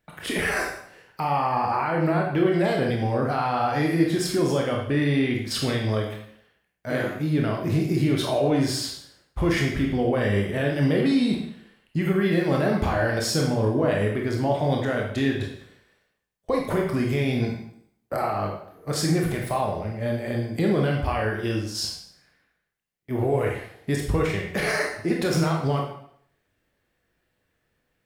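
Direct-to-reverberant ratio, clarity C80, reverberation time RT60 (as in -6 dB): -0.5 dB, 7.0 dB, 0.65 s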